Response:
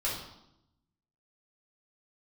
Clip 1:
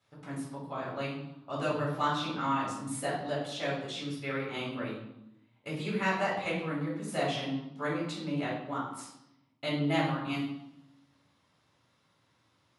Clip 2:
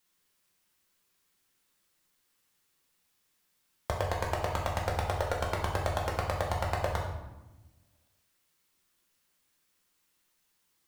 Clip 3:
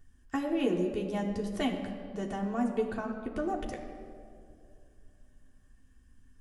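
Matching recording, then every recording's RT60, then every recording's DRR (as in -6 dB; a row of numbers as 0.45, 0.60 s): 1; 0.80, 1.1, 2.4 s; -7.0, -2.0, -1.0 dB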